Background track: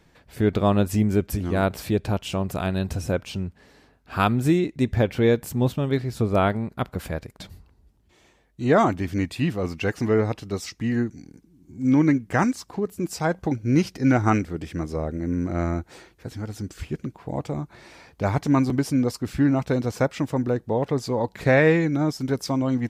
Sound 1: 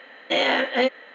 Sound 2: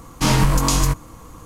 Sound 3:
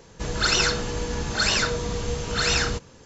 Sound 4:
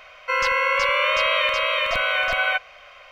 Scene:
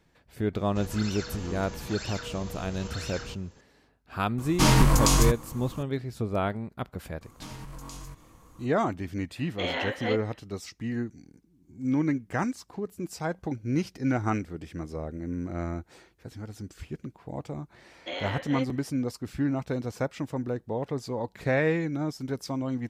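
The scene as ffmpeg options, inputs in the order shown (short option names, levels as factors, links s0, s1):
-filter_complex "[2:a]asplit=2[s0][s1];[1:a]asplit=2[s2][s3];[0:a]volume=0.422[s4];[3:a]acompressor=threshold=0.0447:ratio=6:attack=3.2:release=140:knee=1:detection=peak[s5];[s1]acompressor=threshold=0.0562:ratio=6:attack=3.2:release=140:knee=1:detection=peak[s6];[s5]atrim=end=3.05,asetpts=PTS-STARTPTS,volume=0.398,afade=t=in:d=0.004:c=hsin,afade=t=out:st=3.046:d=0.004:c=hsin,adelay=560[s7];[s0]atrim=end=1.45,asetpts=PTS-STARTPTS,volume=0.708,afade=t=in:d=0.004:c=hsin,afade=t=out:st=1.446:d=0.004:c=hsin,adelay=4380[s8];[s6]atrim=end=1.45,asetpts=PTS-STARTPTS,volume=0.211,afade=t=in:d=0.004:c=hsin,afade=t=out:st=1.446:d=0.004:c=hsin,adelay=7210[s9];[s2]atrim=end=1.14,asetpts=PTS-STARTPTS,volume=0.316,afade=t=in:d=0.1,afade=t=out:st=1.04:d=0.1,adelay=9280[s10];[s3]atrim=end=1.14,asetpts=PTS-STARTPTS,volume=0.2,afade=t=in:d=0.004:c=hsin,afade=t=out:st=1.136:d=0.004:c=hsin,adelay=17760[s11];[s4][s7][s8][s9][s10][s11]amix=inputs=6:normalize=0"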